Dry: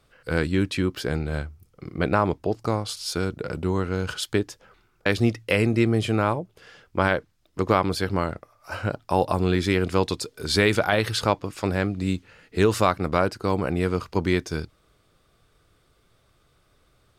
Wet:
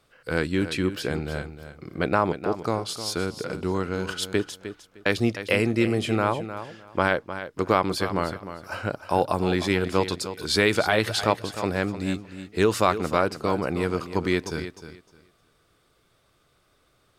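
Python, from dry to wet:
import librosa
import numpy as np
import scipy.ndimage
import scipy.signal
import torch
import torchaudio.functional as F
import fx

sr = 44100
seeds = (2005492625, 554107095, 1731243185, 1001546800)

p1 = fx.low_shelf(x, sr, hz=120.0, db=-9.0)
y = p1 + fx.echo_feedback(p1, sr, ms=306, feedback_pct=20, wet_db=-11.5, dry=0)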